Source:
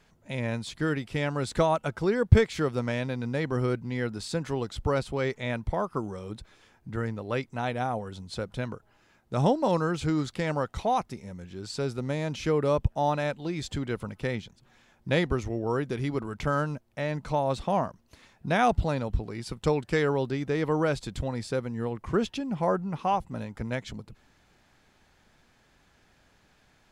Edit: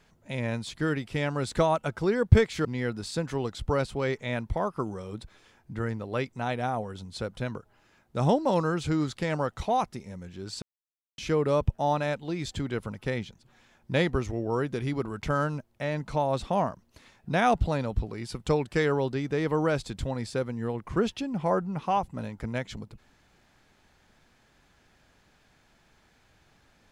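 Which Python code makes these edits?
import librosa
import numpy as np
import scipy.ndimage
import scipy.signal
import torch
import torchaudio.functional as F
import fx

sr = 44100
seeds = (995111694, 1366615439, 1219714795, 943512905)

y = fx.edit(x, sr, fx.cut(start_s=2.65, length_s=1.17),
    fx.silence(start_s=11.79, length_s=0.56), tone=tone)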